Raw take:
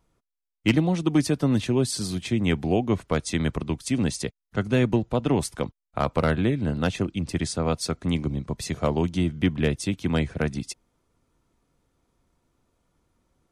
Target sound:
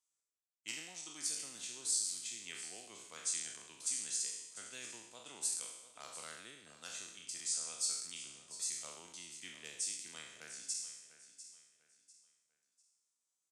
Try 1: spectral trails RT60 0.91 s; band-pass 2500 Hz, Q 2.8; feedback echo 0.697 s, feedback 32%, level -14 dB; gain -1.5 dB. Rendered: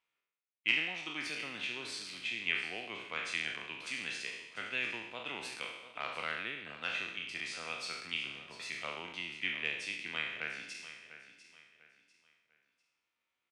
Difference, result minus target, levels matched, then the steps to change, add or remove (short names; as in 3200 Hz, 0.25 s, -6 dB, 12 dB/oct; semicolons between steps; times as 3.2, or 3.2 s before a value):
8000 Hz band -18.0 dB
change: band-pass 7500 Hz, Q 2.8